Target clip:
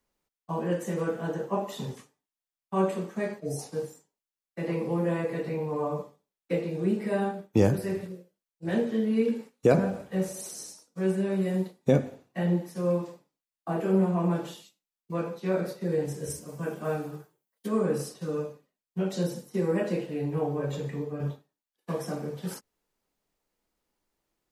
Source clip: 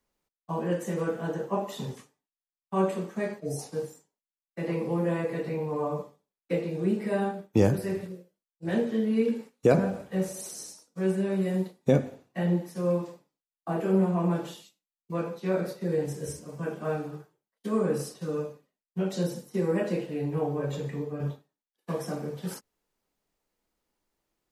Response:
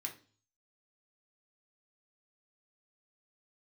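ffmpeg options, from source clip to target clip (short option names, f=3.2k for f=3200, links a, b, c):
-filter_complex "[0:a]asettb=1/sr,asplit=3[a][b][c];[a]atrim=end=16.304[d];[b]atrim=start=16.3:end=17.68,asetpts=PTS-STARTPTS,afade=t=in:d=0.004:c=qsin,afade=t=out:st=1.376:d=0.004:c=qsin,highshelf=f=9.6k:g=12[e];[c]atrim=start=17.676[f];[d][e]acrossfade=d=0.004:c1=hsin:c2=qsin[g];[g][f]acrossfade=d=0.004:c1=qsin:c2=hsin"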